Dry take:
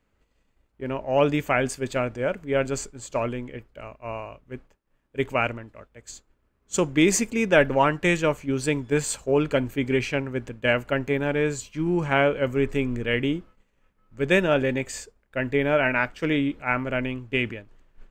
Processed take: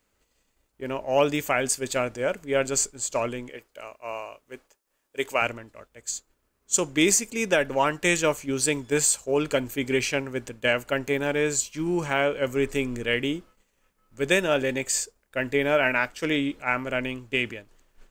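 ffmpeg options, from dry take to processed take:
-filter_complex "[0:a]asettb=1/sr,asplit=3[a][b][c];[a]atrim=end=3.494[d];[b]atrim=start=3.49:end=5.42,asetpts=PTS-STARTPTS,afade=t=in:d=0.004:c=qsin,afade=t=out:st=1.926:d=0.004:c=qsin,bass=f=250:g=-12,treble=f=4k:g=2[e];[c]atrim=start=5.416[f];[d][e]acrossfade=d=0.004:c1=hsin:c2=qsin[g];[g][f]acrossfade=d=0.004:c1=qsin:c2=hsin,bass=f=250:g=-6,treble=f=4k:g=12,alimiter=limit=-9.5dB:level=0:latency=1:release=395"

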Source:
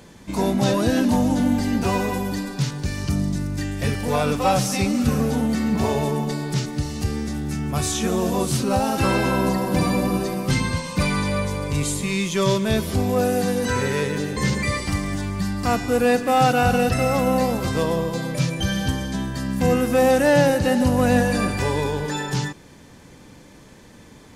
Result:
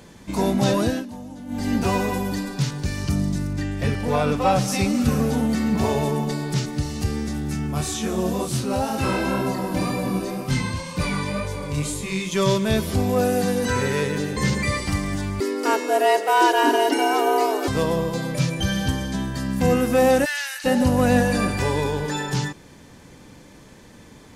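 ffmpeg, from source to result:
-filter_complex "[0:a]asettb=1/sr,asplit=3[a][b][c];[a]atrim=end=3.534[d];[b]atrim=start=3.53:end=4.68,asetpts=PTS-STARTPTS,afade=t=in:d=0.004:c=qsin,afade=t=out:st=1.146:d=0.004:c=qsin,aemphasis=mode=reproduction:type=cd[e];[c]atrim=start=4.676[f];[d][e]acrossfade=d=0.004:c1=hsin:c2=qsin[g];[g][f]acrossfade=d=0.004:c1=qsin:c2=hsin,asplit=3[h][i][j];[h]afade=t=out:st=7.66:d=0.02[k];[i]flanger=delay=22.5:depth=5:speed=2,afade=t=in:st=7.66:d=0.02,afade=t=out:st=12.31:d=0.02[l];[j]afade=t=in:st=12.31:d=0.02[m];[k][l][m]amix=inputs=3:normalize=0,asettb=1/sr,asplit=3[n][o][p];[n]atrim=end=15.404[q];[o]atrim=start=15.4:end=17.68,asetpts=PTS-STARTPTS,afade=t=in:d=0.004:c=qsin,afade=t=out:st=2.276:d=0.004:c=qsin,afreqshift=200[r];[p]atrim=start=17.676[s];[q][r]acrossfade=d=0.004:c1=hsin:c2=qsin[t];[t][s]acrossfade=d=0.004:c1=qsin:c2=hsin,asplit=3[u][v][w];[u]afade=t=out:st=20.24:d=0.02[x];[v]highpass=f=1.5k:w=0.5412,highpass=f=1.5k:w=1.3066,afade=t=in:st=20.24:d=0.02,afade=t=out:st=20.64:d=0.02[y];[w]afade=t=in:st=20.64:d=0.02[z];[x][y][z]amix=inputs=3:normalize=0,asplit=3[aa][ab][ac];[aa]atrim=end=1.06,asetpts=PTS-STARTPTS,afade=t=out:st=0.82:d=0.24:silence=0.133352[ad];[ab]atrim=start=1.06:end=1.47,asetpts=PTS-STARTPTS,volume=-17.5dB[ae];[ac]atrim=start=1.47,asetpts=PTS-STARTPTS,afade=t=in:d=0.24:silence=0.133352[af];[ad][ae][af]concat=n=3:v=0:a=1"

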